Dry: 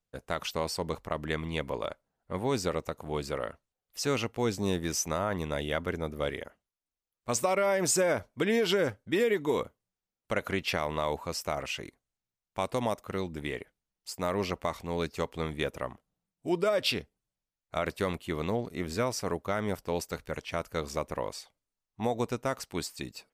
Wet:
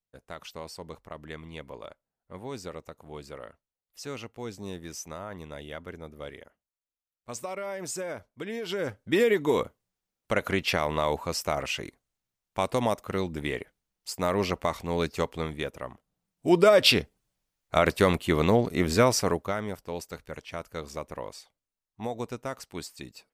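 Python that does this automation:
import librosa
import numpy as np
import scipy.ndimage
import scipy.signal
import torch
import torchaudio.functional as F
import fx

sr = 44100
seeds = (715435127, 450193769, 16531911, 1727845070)

y = fx.gain(x, sr, db=fx.line((8.61, -8.5), (9.11, 4.0), (15.23, 4.0), (15.78, -3.0), (16.58, 9.0), (19.16, 9.0), (19.73, -3.5)))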